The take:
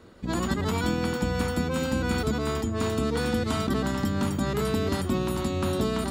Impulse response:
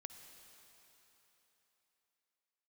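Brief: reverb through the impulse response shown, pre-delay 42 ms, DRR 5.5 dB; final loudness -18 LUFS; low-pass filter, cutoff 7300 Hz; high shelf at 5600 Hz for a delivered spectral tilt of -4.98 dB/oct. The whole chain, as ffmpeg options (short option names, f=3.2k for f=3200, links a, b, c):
-filter_complex "[0:a]lowpass=7.3k,highshelf=f=5.6k:g=8,asplit=2[a][b];[1:a]atrim=start_sample=2205,adelay=42[c];[b][c]afir=irnorm=-1:irlink=0,volume=-0.5dB[d];[a][d]amix=inputs=2:normalize=0,volume=8.5dB"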